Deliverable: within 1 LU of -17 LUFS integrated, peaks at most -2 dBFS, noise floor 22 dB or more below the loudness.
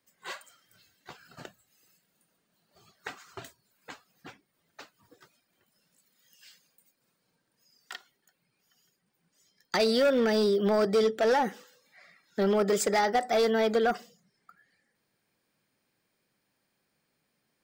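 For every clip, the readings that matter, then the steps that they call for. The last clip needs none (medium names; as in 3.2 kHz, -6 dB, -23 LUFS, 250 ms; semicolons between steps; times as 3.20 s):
clipped samples 1.2%; clipping level -19.5 dBFS; loudness -26.0 LUFS; peak level -19.5 dBFS; loudness target -17.0 LUFS
-> clip repair -19.5 dBFS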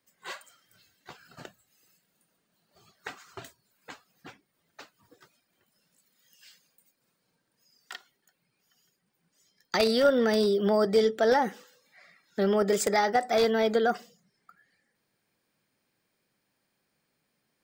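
clipped samples 0.0%; loudness -25.0 LUFS; peak level -10.5 dBFS; loudness target -17.0 LUFS
-> trim +8 dB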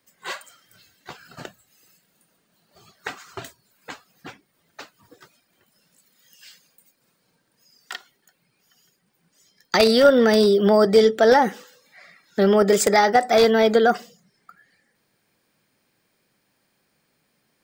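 loudness -17.0 LUFS; peak level -2.5 dBFS; noise floor -70 dBFS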